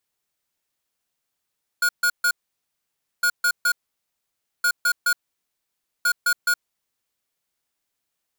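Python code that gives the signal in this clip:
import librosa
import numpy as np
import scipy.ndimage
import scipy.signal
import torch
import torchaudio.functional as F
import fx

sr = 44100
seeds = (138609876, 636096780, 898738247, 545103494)

y = fx.beep_pattern(sr, wave='square', hz=1440.0, on_s=0.07, off_s=0.14, beeps=3, pause_s=0.92, groups=4, level_db=-19.0)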